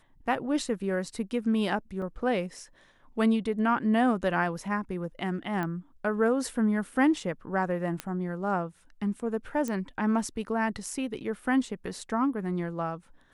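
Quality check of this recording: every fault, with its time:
0:02.02: drop-out 2.5 ms
0:05.63: click −20 dBFS
0:08.00: click −16 dBFS
0:09.68: click −20 dBFS

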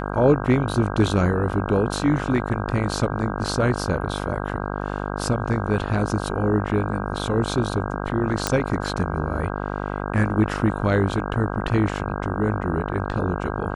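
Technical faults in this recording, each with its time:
mains buzz 50 Hz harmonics 32 −28 dBFS
0:08.47: click −4 dBFS

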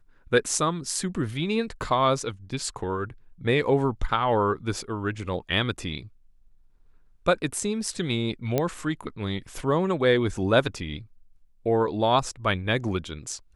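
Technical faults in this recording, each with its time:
0:08.58: click −10 dBFS

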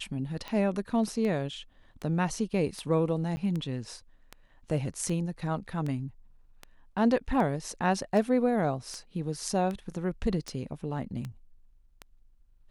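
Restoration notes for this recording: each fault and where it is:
scratch tick 78 rpm −23 dBFS
0:03.36–0:03.37: drop-out 10 ms

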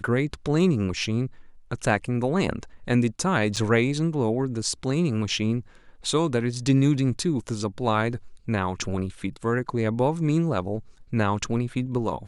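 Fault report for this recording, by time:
0:03.56–0:03.57: drop-out 6.5 ms

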